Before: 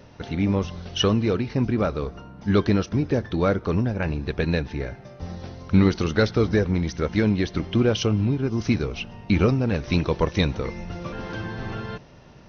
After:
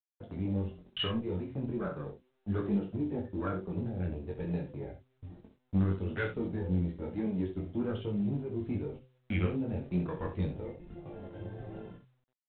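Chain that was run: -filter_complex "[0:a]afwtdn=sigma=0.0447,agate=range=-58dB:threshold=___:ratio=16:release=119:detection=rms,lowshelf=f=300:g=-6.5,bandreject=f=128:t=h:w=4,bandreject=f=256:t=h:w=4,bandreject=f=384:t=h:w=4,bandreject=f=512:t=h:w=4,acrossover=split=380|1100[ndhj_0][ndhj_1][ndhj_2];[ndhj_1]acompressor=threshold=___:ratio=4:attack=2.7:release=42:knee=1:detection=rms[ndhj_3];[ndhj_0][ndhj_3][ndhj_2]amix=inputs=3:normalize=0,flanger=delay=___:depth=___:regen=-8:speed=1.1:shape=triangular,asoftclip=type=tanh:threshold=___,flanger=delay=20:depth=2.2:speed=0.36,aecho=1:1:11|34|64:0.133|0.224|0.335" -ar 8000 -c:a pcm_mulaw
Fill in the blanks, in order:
-33dB, -39dB, 4.5, 8.2, -20.5dB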